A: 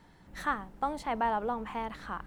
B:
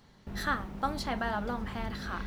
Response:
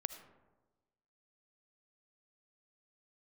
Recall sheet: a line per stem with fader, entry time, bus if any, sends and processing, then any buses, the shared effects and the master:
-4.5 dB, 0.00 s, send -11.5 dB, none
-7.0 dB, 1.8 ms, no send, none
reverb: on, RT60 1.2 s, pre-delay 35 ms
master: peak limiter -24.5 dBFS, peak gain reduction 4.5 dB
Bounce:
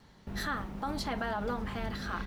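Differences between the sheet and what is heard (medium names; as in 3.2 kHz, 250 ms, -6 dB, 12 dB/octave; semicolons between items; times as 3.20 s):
stem A -4.5 dB -> -11.5 dB; stem B -7.0 dB -> +0.5 dB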